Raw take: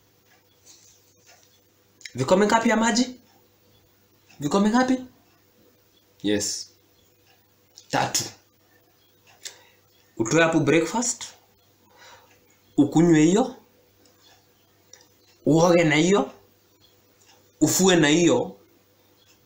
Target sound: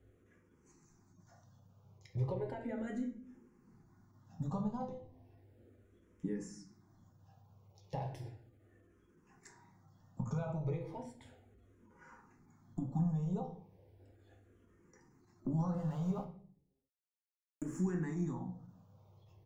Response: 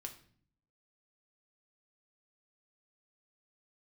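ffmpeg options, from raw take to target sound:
-filter_complex "[0:a]asettb=1/sr,asplit=3[link_01][link_02][link_03];[link_01]atrim=end=15.744[link_04];[link_02]atrim=start=15.74:end=17.78,asetpts=PTS-STARTPTS,afade=type=in:duration=0.004:curve=qsin,afade=type=out:start_time=2.036:duration=0.004:curve=qsin,aeval=exprs='val(0)*gte(abs(val(0)),0.0631)':channel_layout=same[link_05];[link_03]atrim=start=17.776[link_06];[link_04][link_05]acrossfade=duration=0.004:curve1=hsin:curve2=qsin[link_07];[link_07][link_06]acrossfade=duration=0.004:curve1=qsin:curve2=hsin,acompressor=threshold=-34dB:ratio=4,firequalizer=gain_entry='entry(190,0);entry(310,-8);entry(910,-8);entry(2800,-23);entry(4100,-26);entry(9500,-19);entry(14000,-29)':delay=0.05:min_phase=1[link_08];[1:a]atrim=start_sample=2205[link_09];[link_08][link_09]afir=irnorm=-1:irlink=0,asplit=2[link_10][link_11];[link_11]afreqshift=-0.35[link_12];[link_10][link_12]amix=inputs=2:normalize=1,volume=8dB"

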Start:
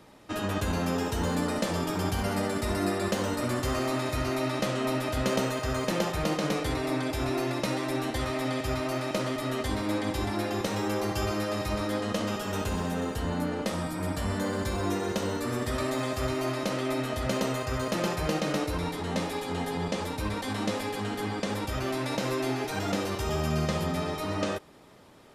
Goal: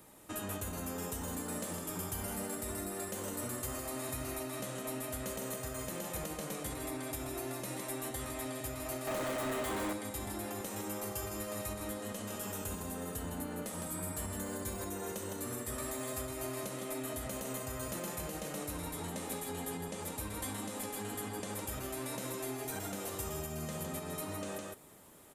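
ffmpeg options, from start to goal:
ffmpeg -i in.wav -filter_complex "[0:a]aecho=1:1:159:0.473,alimiter=level_in=1.5dB:limit=-24dB:level=0:latency=1:release=352,volume=-1.5dB,asettb=1/sr,asplit=3[link_01][link_02][link_03];[link_01]atrim=end=9.074[link_04];[link_02]atrim=start=9.07:end=9.93,asetpts=PTS-STARTPTS,afade=type=in:duration=0.004:curve=qsin,afade=type=out:start_time=0.856:duration=0.004:curve=qsin,asplit=2[link_05][link_06];[link_06]highpass=frequency=720:poles=1,volume=28dB,asoftclip=type=tanh:threshold=-21.5dB[link_07];[link_05][link_07]amix=inputs=2:normalize=0,lowpass=frequency=1400:poles=1,volume=-6dB[link_08];[link_03]atrim=start=9.926[link_09];[link_04][link_08]acrossfade=duration=0.004:curve1=hsin:curve2=qsin[link_10];[link_10][link_09]acrossfade=duration=0.004:curve1=qsin:curve2=hsin,aexciter=amount=7.4:drive=2.6:freq=7100,volume=-6dB" out.wav

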